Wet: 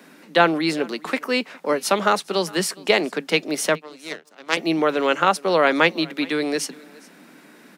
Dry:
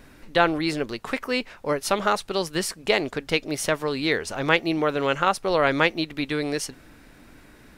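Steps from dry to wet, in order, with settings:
0:03.75–0:04.57: power curve on the samples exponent 2
Butterworth high-pass 160 Hz 96 dB per octave
on a send: single-tap delay 413 ms −23.5 dB
on the sum: level +3.5 dB

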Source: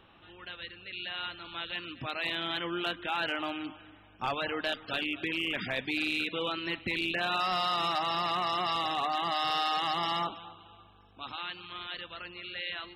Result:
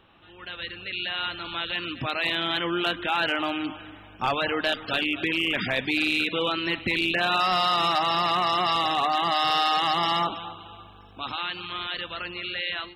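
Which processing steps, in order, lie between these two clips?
in parallel at −2 dB: brickwall limiter −34 dBFS, peak gain reduction 10.5 dB
on the sum: automatic gain control gain up to 9.5 dB
level −4.5 dB

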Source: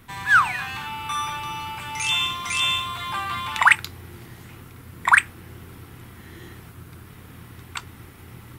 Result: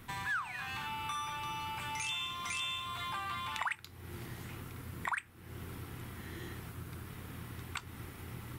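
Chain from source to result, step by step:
downward compressor 4 to 1, threshold −35 dBFS, peak gain reduction 21 dB
level −2.5 dB

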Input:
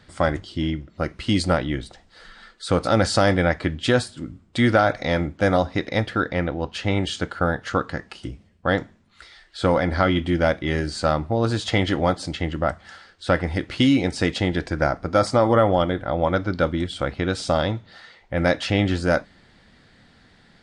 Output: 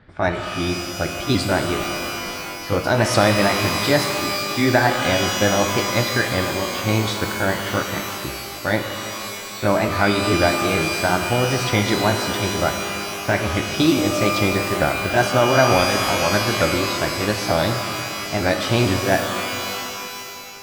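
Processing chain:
pitch shifter swept by a sawtooth +3.5 semitones, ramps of 449 ms
low-pass that shuts in the quiet parts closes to 2,100 Hz
reverb with rising layers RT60 2.7 s, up +12 semitones, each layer −2 dB, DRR 5.5 dB
level +1.5 dB

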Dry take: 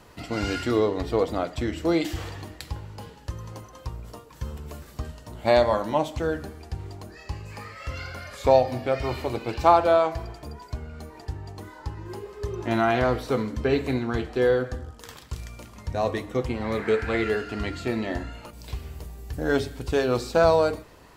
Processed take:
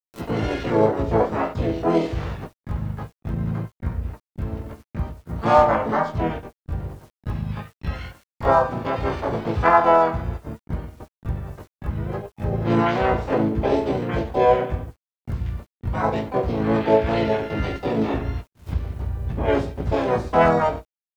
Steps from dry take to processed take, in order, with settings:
head-to-tape spacing loss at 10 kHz 43 dB
in parallel at −0.5 dB: downward compressor 4 to 1, threshold −33 dBFS, peak gain reduction 15.5 dB
on the sum: low-pass that shuts in the quiet parts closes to 2,200 Hz, open at −16.5 dBFS
double-tracking delay 18 ms −2 dB
on a send: flutter between parallel walls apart 6.3 metres, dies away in 0.27 s
on the sum: noise gate −29 dBFS, range −44 dB
bit reduction 11 bits
upward compression, threshold −22 dBFS
high-shelf EQ 4,300 Hz +6.5 dB
pitch-shifted copies added +4 semitones −5 dB, +7 semitones −3 dB, +12 semitones −7 dB
level −3 dB

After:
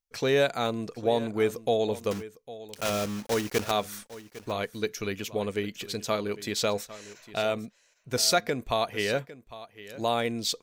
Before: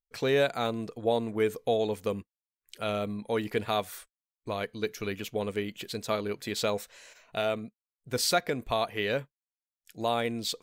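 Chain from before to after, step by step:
0:02.11–0:03.72: one scale factor per block 3 bits
parametric band 5,900 Hz +5.5 dB 0.57 octaves
single-tap delay 804 ms −16.5 dB
level +1.5 dB

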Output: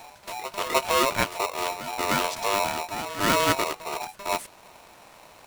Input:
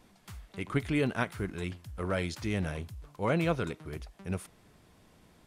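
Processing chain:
in parallel at −2.5 dB: downward compressor, threshold −42 dBFS, peak gain reduction 17 dB
on the sum: backwards echo 306 ms −13 dB
ring modulator with a square carrier 800 Hz
level +5 dB

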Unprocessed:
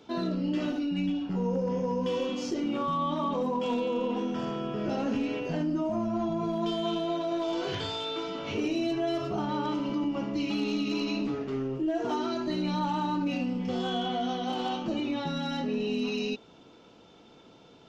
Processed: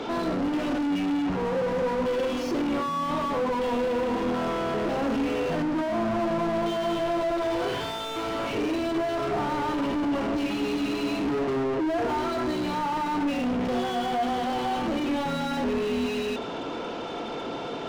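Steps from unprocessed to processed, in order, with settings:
mid-hump overdrive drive 38 dB, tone 1,100 Hz, clips at −20.5 dBFS
on a send: convolution reverb RT60 1.0 s, pre-delay 3 ms, DRR 13.5 dB

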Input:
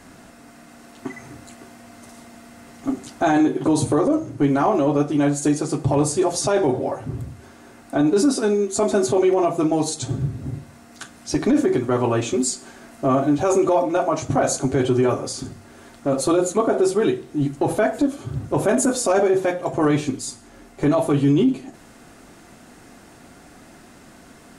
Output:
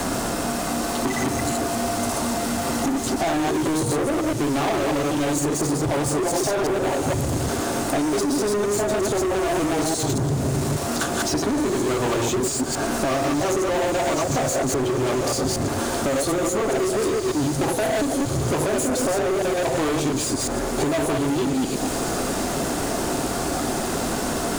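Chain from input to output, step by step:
delay that plays each chunk backwards 117 ms, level −1.5 dB
octave-band graphic EQ 125/250/2,000 Hz −4/−4/−9 dB
downward compressor, threshold −32 dBFS, peak gain reduction 17.5 dB
leveller curve on the samples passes 5
on a send: feedback delay with all-pass diffusion 1,798 ms, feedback 68%, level −13.5 dB
on the sum: multiband upward and downward compressor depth 70%

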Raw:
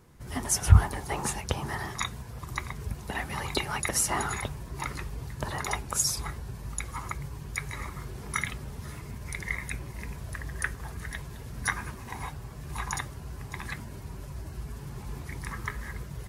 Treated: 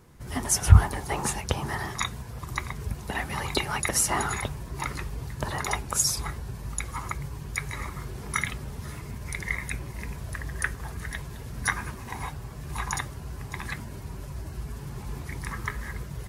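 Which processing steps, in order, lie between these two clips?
0:04.73–0:05.53: floating-point word with a short mantissa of 6 bits
level +2.5 dB

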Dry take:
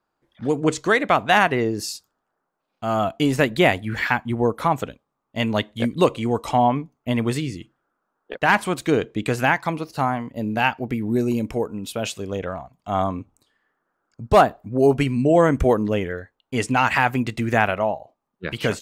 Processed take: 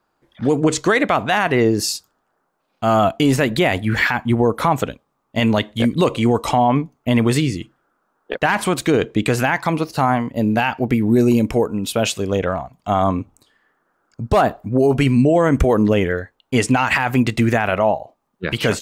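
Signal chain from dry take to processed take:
boost into a limiter +13.5 dB
level −5.5 dB

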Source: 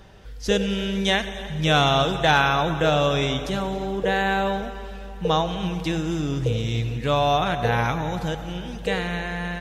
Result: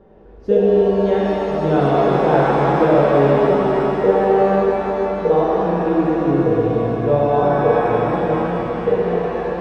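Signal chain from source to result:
drawn EQ curve 100 Hz 0 dB, 410 Hz +14 dB, 8,200 Hz −27 dB
reverb with rising layers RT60 3.8 s, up +7 semitones, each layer −8 dB, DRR −6.5 dB
level −8 dB

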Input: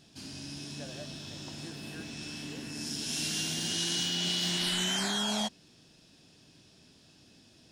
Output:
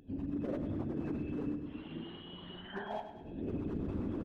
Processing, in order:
spectral envelope exaggerated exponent 3
camcorder AGC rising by 29 dB per second
parametric band 140 Hz −12.5 dB 0.68 octaves
downward compressor 12 to 1, threshold −35 dBFS, peak gain reduction 8 dB
harmonic generator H 2 −14 dB, 3 −20 dB, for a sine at −27 dBFS
Gaussian smoothing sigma 5.1 samples
wave folding −35 dBFS
time stretch by phase vocoder 0.55×
on a send: repeating echo 102 ms, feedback 48%, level −10 dB
on the sum: one half of a high-frequency compander encoder only
level +9 dB

